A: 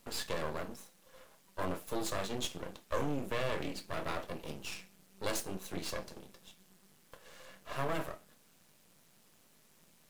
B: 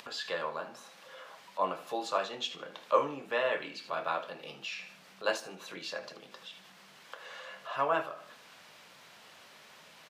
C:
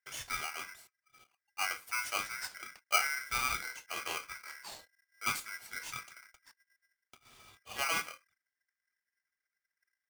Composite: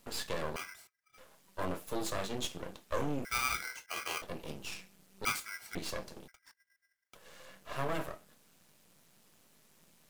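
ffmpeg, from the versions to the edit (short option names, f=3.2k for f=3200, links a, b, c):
-filter_complex "[2:a]asplit=4[a][b][c][d];[0:a]asplit=5[e][f][g][h][i];[e]atrim=end=0.562[j];[a]atrim=start=0.558:end=1.182[k];[f]atrim=start=1.178:end=3.252[l];[b]atrim=start=3.248:end=4.222[m];[g]atrim=start=4.218:end=5.252[n];[c]atrim=start=5.248:end=5.752[o];[h]atrim=start=5.748:end=6.282[p];[d]atrim=start=6.278:end=7.152[q];[i]atrim=start=7.148[r];[j][k]acrossfade=d=0.004:c1=hsin:c2=hsin[s];[s][l]acrossfade=d=0.004:c1=hsin:c2=hsin[t];[t][m]acrossfade=d=0.004:c1=hsin:c2=hsin[u];[u][n]acrossfade=d=0.004:c1=hsin:c2=hsin[v];[v][o]acrossfade=d=0.004:c1=hsin:c2=hsin[w];[w][p]acrossfade=d=0.004:c1=hsin:c2=hsin[x];[x][q]acrossfade=d=0.004:c1=hsin:c2=hsin[y];[y][r]acrossfade=d=0.004:c1=hsin:c2=hsin"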